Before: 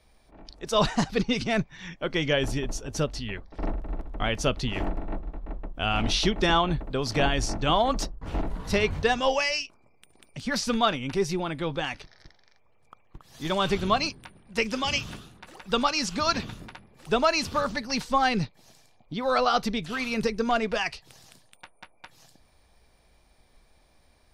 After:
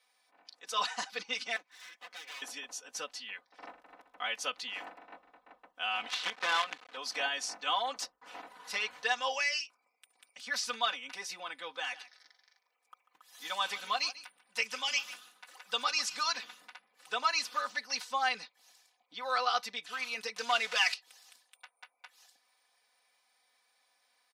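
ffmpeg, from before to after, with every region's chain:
-filter_complex "[0:a]asettb=1/sr,asplit=3[a][b][c];[a]atrim=end=1.564[d];[b]atrim=start=1.56:end=2.42,asetpts=PTS-STARTPTS,afade=t=in:d=0.004:c=qsin,afade=t=out:st=0.856:d=0.004:c=qsin,aecho=1:1:5.9:0.34,atrim=end_sample=37926,acompressor=threshold=-36dB:ratio=2.5:attack=3.2:release=140:knee=1:detection=peak,aeval=exprs='abs(val(0))':c=same[e];[c]atrim=start=2.416[f];[d][e]acrossfade=d=0.004:c1=hsin:c2=qsin[g];[g][f]acrossfade=d=0.004:c1=qsin:c2=hsin,asettb=1/sr,asplit=3[h][i][j];[h]atrim=end=6.084[k];[i]atrim=start=6.08:end=6.97,asetpts=PTS-STARTPTS,afade=t=in:d=0.004:c=qsin,afade=t=out:st=0.886:d=0.004:c=qsin,acrusher=bits=4:dc=4:mix=0:aa=0.000001,highpass=120,lowpass=3.8k[l];[j]atrim=start=6.966[m];[k][l]acrossfade=d=0.004:c1=hsin:c2=qsin[n];[n][m]acrossfade=d=0.004:c1=qsin:c2=hsin,asettb=1/sr,asplit=3[o][p][q];[o]atrim=end=11.774[r];[p]atrim=start=11.77:end=16.32,asetpts=PTS-STARTPTS,afade=t=in:d=0.004:c=qsin,afade=t=out:st=4.546:d=0.004:c=qsin,highshelf=f=10k:g=7,aecho=1:1:143:0.15,atrim=end_sample=200655[s];[q]atrim=start=16.316[t];[r][s]acrossfade=d=0.004:c1=hsin:c2=qsin[u];[u][t]acrossfade=d=0.004:c1=qsin:c2=hsin,asettb=1/sr,asplit=3[v][w][x];[v]atrim=end=20.364[y];[w]atrim=start=20.36:end=20.94,asetpts=PTS-STARTPTS,afade=t=in:d=0.004:c=qsin,afade=t=out:st=0.576:d=0.004:c=qsin,aeval=exprs='val(0)+0.5*0.0224*sgn(val(0))':c=same,highpass=130,lowpass=6.2k,highshelf=f=2.2k:g=10[z];[x]atrim=start=20.936[aa];[y][z]acrossfade=d=0.004:c1=hsin:c2=qsin[ab];[ab][aa]acrossfade=d=0.004:c1=qsin:c2=hsin,highpass=1k,aecho=1:1:4:0.95,volume=-7dB"

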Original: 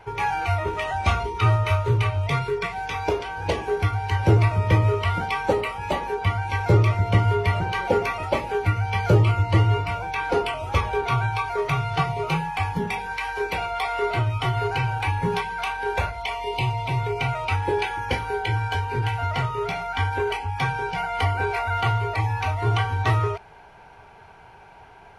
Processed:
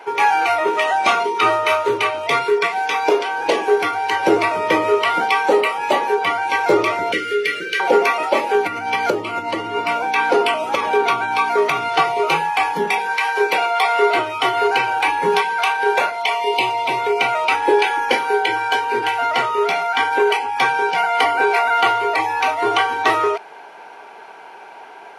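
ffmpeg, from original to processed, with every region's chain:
-filter_complex "[0:a]asettb=1/sr,asplit=3[a][b][c];[a]atrim=end=7.124[d];[b]atrim=start=7.12:end=7.8,asetpts=PTS-STARTPTS,afade=t=in:d=0.004:c=qsin,afade=t=out:st=0.676:d=0.004:c=qsin,asuperstop=centerf=850:order=8:qfactor=0.94,lowshelf=f=260:g=-11[e];[c]atrim=start=7.796[f];[d][e]acrossfade=d=0.004:c1=hsin:c2=qsin[g];[g][f]acrossfade=d=0.004:c1=qsin:c2=hsin,asettb=1/sr,asplit=3[h][i][j];[h]atrim=end=8.544[k];[i]atrim=start=8.54:end=11.88,asetpts=PTS-STARTPTS,afade=t=in:d=0.004:c=qsin,afade=t=out:st=3.336:d=0.004:c=qsin,equalizer=f=100:w=1.5:g=5.5,acompressor=threshold=-19dB:ratio=4:attack=3.2:release=140:knee=1:detection=peak,aeval=exprs='val(0)+0.0224*(sin(2*PI*60*n/s)+sin(2*PI*2*60*n/s)/2+sin(2*PI*3*60*n/s)/3+sin(2*PI*4*60*n/s)/4+sin(2*PI*5*60*n/s)/5)':c=same[l];[j]atrim=start=11.876[m];[k][l]acrossfade=d=0.004:c1=hsin:c2=qsin[n];[n][m]acrossfade=d=0.004:c1=qsin:c2=hsin,highpass=f=280:w=0.5412,highpass=f=280:w=1.3066,alimiter=level_in=12.5dB:limit=-1dB:release=50:level=0:latency=1,volume=-3dB"

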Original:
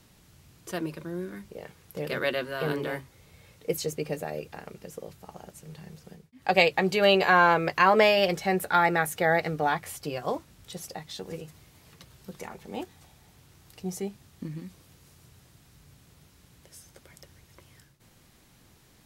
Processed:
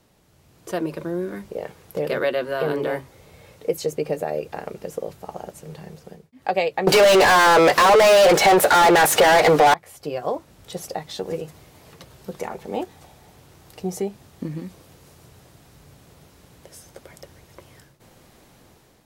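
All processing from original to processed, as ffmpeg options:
-filter_complex "[0:a]asettb=1/sr,asplit=3[a][b][c];[a]atrim=end=6.874[d];[b]atrim=start=6.87:end=9.74,asetpts=PTS-STARTPTS,afade=t=in:d=0.004:c=qsin,afade=t=out:st=2.866:d=0.004:c=qsin,asplit=2[e][f];[f]highpass=f=720:p=1,volume=33dB,asoftclip=type=tanh:threshold=-5.5dB[g];[e][g]amix=inputs=2:normalize=0,lowpass=f=7.6k:p=1,volume=-6dB,aeval=exprs='0.531*sin(PI/2*1.78*val(0)/0.531)':c=same[h];[c]atrim=start=9.736[i];[d][h]acrossfade=d=0.004:c1=hsin:c2=qsin[j];[j][i]acrossfade=d=0.004:c1=qsin:c2=hsin,dynaudnorm=f=260:g=5:m=9dB,equalizer=f=570:w=0.69:g=8.5,acompressor=threshold=-18dB:ratio=2,volume=-4.5dB"

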